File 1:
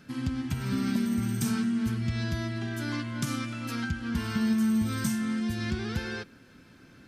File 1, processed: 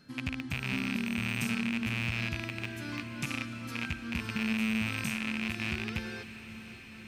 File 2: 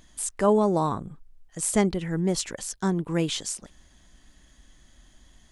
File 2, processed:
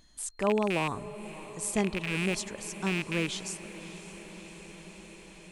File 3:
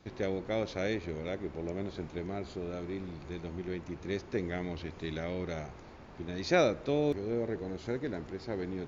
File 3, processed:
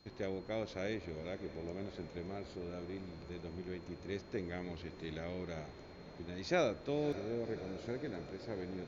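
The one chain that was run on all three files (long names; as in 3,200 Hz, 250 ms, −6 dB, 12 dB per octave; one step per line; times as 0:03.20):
loose part that buzzes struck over −31 dBFS, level −15 dBFS
steady tone 4,200 Hz −59 dBFS
feedback delay with all-pass diffusion 587 ms, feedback 76%, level −15 dB
level −6.5 dB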